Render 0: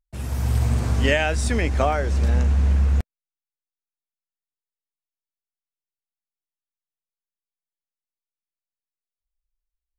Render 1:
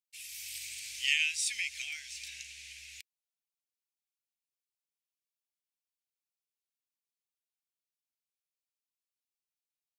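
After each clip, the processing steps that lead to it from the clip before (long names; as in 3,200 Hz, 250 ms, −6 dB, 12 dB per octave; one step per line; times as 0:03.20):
elliptic high-pass filter 2,300 Hz, stop band 50 dB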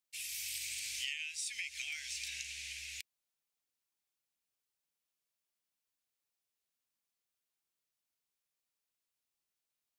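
downward compressor 8 to 1, threshold −41 dBFS, peak gain reduction 18 dB
level +4 dB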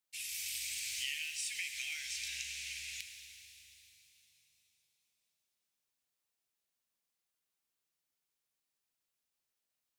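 reverb with rising layers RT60 3.2 s, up +7 semitones, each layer −8 dB, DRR 5.5 dB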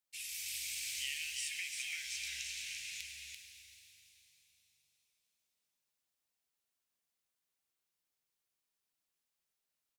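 single-tap delay 339 ms −5 dB
level −2 dB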